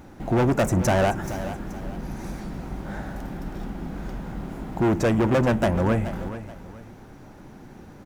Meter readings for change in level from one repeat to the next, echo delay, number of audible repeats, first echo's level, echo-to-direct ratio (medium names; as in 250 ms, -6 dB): -9.5 dB, 429 ms, 2, -12.5 dB, -12.0 dB